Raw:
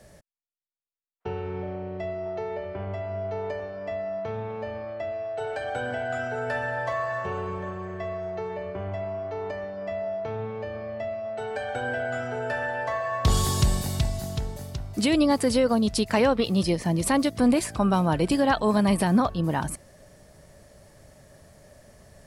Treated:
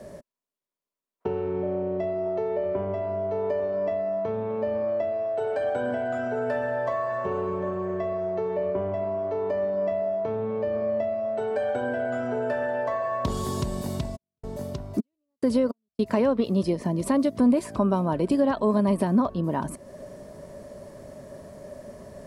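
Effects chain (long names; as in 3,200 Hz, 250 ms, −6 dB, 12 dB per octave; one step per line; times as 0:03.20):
downward compressor 2 to 1, threshold −40 dBFS, peak gain reduction 13 dB
0:14.15–0:16.16: gate pattern "x...xx..xx..xxx" 106 BPM −60 dB
hollow resonant body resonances 250/390/570/970 Hz, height 13 dB, ringing for 25 ms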